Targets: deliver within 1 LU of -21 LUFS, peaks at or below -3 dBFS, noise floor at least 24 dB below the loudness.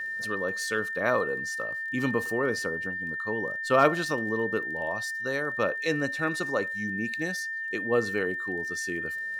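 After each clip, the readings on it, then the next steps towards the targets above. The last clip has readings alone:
ticks 23/s; steady tone 1800 Hz; tone level -31 dBFS; loudness -28.5 LUFS; peak -9.0 dBFS; loudness target -21.0 LUFS
-> de-click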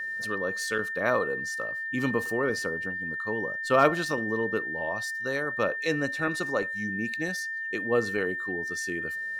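ticks 0/s; steady tone 1800 Hz; tone level -31 dBFS
-> notch 1800 Hz, Q 30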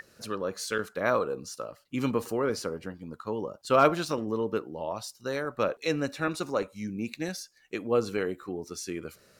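steady tone none; loudness -31.0 LUFS; peak -9.5 dBFS; loudness target -21.0 LUFS
-> gain +10 dB; limiter -3 dBFS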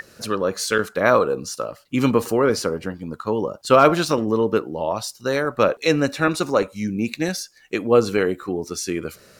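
loudness -21.5 LUFS; peak -3.0 dBFS; noise floor -52 dBFS

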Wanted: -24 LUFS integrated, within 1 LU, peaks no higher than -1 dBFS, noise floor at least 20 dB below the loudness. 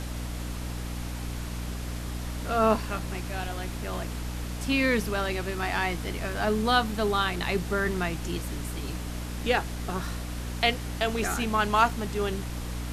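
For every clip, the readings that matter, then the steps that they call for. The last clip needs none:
hum 60 Hz; harmonics up to 300 Hz; hum level -32 dBFS; noise floor -35 dBFS; noise floor target -49 dBFS; loudness -29.0 LUFS; peak -8.0 dBFS; loudness target -24.0 LUFS
-> de-hum 60 Hz, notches 5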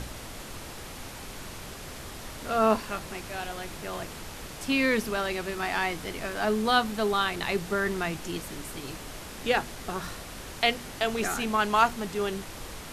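hum none; noise floor -42 dBFS; noise floor target -49 dBFS
-> noise print and reduce 7 dB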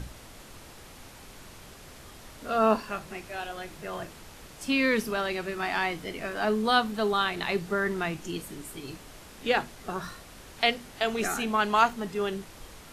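noise floor -49 dBFS; loudness -28.5 LUFS; peak -8.5 dBFS; loudness target -24.0 LUFS
-> gain +4.5 dB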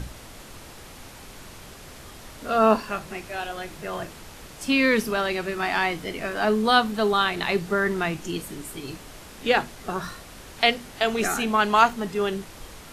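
loudness -24.0 LUFS; peak -4.0 dBFS; noise floor -44 dBFS

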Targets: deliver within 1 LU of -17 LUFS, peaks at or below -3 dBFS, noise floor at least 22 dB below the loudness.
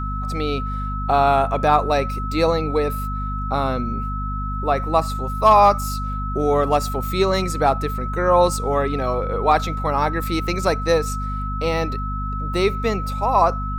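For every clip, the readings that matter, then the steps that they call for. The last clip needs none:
hum 50 Hz; harmonics up to 250 Hz; hum level -24 dBFS; steady tone 1300 Hz; tone level -28 dBFS; loudness -20.5 LUFS; peak -3.5 dBFS; loudness target -17.0 LUFS
-> de-hum 50 Hz, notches 5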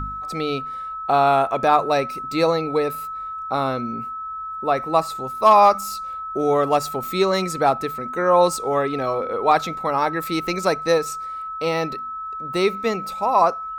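hum none; steady tone 1300 Hz; tone level -28 dBFS
-> notch 1300 Hz, Q 30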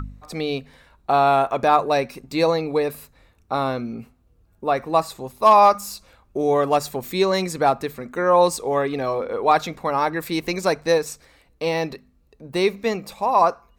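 steady tone none; loudness -21.0 LUFS; peak -4.0 dBFS; loudness target -17.0 LUFS
-> gain +4 dB; limiter -3 dBFS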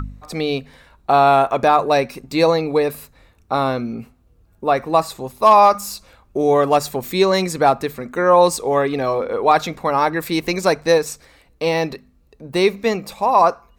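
loudness -17.5 LUFS; peak -3.0 dBFS; noise floor -56 dBFS

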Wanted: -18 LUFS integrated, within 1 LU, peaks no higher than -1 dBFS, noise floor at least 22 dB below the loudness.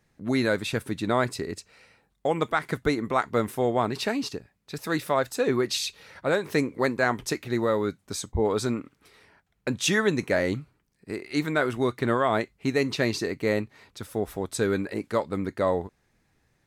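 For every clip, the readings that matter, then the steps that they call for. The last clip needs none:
loudness -27.0 LUFS; peak -10.5 dBFS; loudness target -18.0 LUFS
-> gain +9 dB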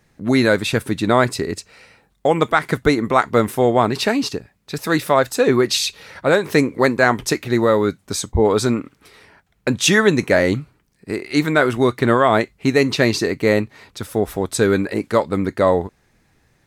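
loudness -18.0 LUFS; peak -1.5 dBFS; noise floor -62 dBFS

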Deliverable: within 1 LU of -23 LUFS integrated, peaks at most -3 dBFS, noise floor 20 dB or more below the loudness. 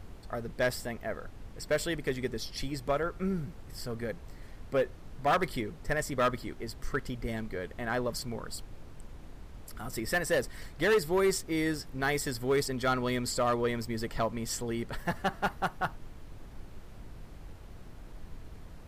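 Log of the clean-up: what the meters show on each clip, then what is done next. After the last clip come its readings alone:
clipped 0.6%; flat tops at -21.0 dBFS; noise floor -49 dBFS; noise floor target -53 dBFS; loudness -32.5 LUFS; peak -21.0 dBFS; loudness target -23.0 LUFS
-> clip repair -21 dBFS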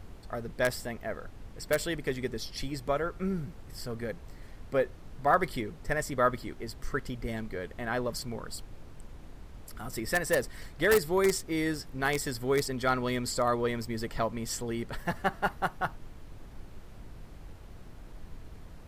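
clipped 0.0%; noise floor -49 dBFS; noise floor target -52 dBFS
-> noise print and reduce 6 dB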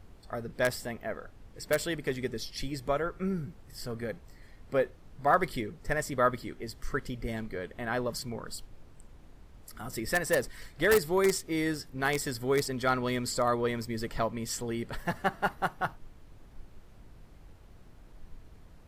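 noise floor -54 dBFS; loudness -31.5 LUFS; peak -12.0 dBFS; loudness target -23.0 LUFS
-> gain +8.5 dB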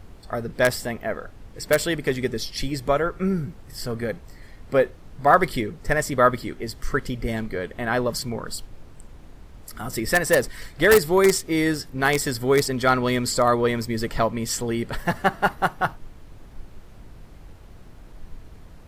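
loudness -23.0 LUFS; peak -3.5 dBFS; noise floor -45 dBFS

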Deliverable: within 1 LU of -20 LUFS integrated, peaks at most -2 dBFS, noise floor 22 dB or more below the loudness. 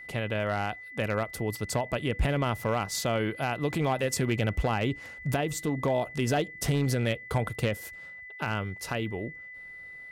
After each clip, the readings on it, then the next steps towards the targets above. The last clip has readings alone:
clipped 0.9%; flat tops at -19.5 dBFS; steady tone 2000 Hz; tone level -42 dBFS; loudness -30.0 LUFS; peak -19.5 dBFS; loudness target -20.0 LUFS
-> clip repair -19.5 dBFS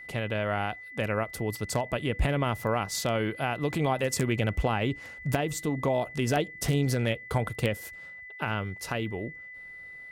clipped 0.0%; steady tone 2000 Hz; tone level -42 dBFS
-> notch 2000 Hz, Q 30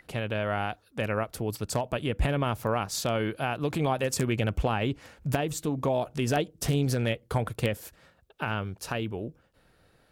steady tone none; loudness -30.0 LUFS; peak -10.5 dBFS; loudness target -20.0 LUFS
-> gain +10 dB; limiter -2 dBFS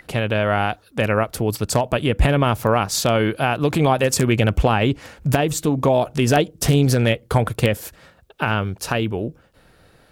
loudness -20.0 LUFS; peak -2.0 dBFS; noise floor -54 dBFS

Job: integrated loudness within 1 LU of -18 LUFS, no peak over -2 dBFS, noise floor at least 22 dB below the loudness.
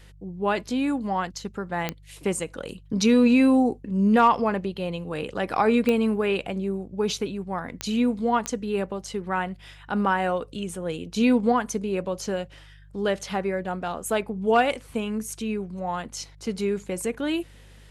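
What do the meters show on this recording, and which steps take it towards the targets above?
clicks 4; hum 50 Hz; harmonics up to 150 Hz; hum level -47 dBFS; loudness -25.5 LUFS; peak -8.0 dBFS; loudness target -18.0 LUFS
-> de-click; de-hum 50 Hz, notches 3; gain +7.5 dB; limiter -2 dBFS

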